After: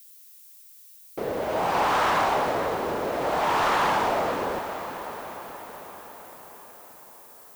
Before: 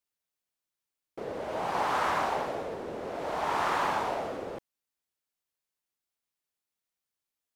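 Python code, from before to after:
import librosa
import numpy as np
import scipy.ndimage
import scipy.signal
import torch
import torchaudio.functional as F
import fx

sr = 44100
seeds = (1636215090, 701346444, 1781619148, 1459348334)

y = fx.echo_diffused(x, sr, ms=517, feedback_pct=59, wet_db=-11.0)
y = fx.fold_sine(y, sr, drive_db=6, ceiling_db=-15.5)
y = fx.dmg_noise_colour(y, sr, seeds[0], colour='violet', level_db=-48.0)
y = F.gain(torch.from_numpy(y), -2.0).numpy()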